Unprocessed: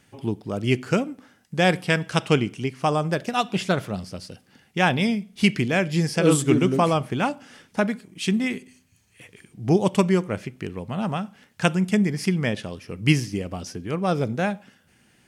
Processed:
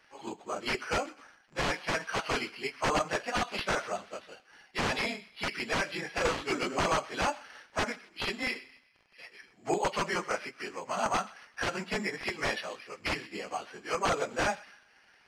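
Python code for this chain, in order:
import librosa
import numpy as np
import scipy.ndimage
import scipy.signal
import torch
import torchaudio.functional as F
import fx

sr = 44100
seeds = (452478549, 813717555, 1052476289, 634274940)

p1 = fx.phase_scramble(x, sr, seeds[0], window_ms=50)
p2 = scipy.signal.sosfilt(scipy.signal.butter(2, 940.0, 'highpass', fs=sr, output='sos'), p1)
p3 = fx.rider(p2, sr, range_db=4, speed_s=0.5)
p4 = p2 + (p3 * 10.0 ** (1.0 / 20.0))
p5 = fx.dmg_crackle(p4, sr, seeds[1], per_s=47.0, level_db=-38.0)
p6 = (np.mod(10.0 ** (15.5 / 20.0) * p5 + 1.0, 2.0) - 1.0) / 10.0 ** (15.5 / 20.0)
p7 = p6 + fx.echo_wet_highpass(p6, sr, ms=126, feedback_pct=39, hz=1500.0, wet_db=-18, dry=0)
p8 = (np.kron(scipy.signal.resample_poly(p7, 1, 6), np.eye(6)[0]) * 6)[:len(p7)]
y = fx.spacing_loss(p8, sr, db_at_10k=33)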